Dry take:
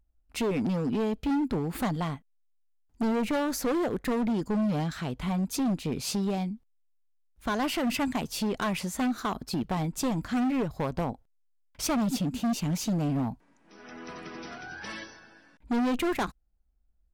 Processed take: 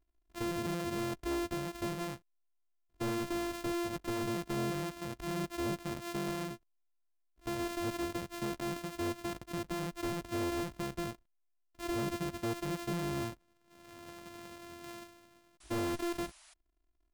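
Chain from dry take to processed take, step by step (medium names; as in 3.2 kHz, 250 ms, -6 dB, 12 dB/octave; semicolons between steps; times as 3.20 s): sorted samples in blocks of 128 samples; painted sound noise, 15.60–16.54 s, 590–11000 Hz -52 dBFS; trim -8 dB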